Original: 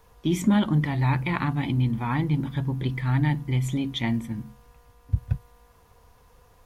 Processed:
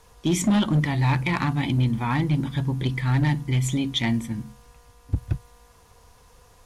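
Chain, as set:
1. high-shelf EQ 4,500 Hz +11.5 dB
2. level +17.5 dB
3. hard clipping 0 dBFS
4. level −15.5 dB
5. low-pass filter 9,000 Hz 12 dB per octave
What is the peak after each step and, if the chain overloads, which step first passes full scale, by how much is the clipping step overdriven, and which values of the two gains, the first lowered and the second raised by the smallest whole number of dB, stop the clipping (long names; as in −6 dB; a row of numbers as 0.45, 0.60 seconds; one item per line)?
−9.5, +8.0, 0.0, −15.5, −14.5 dBFS
step 2, 8.0 dB
step 2 +9.5 dB, step 4 −7.5 dB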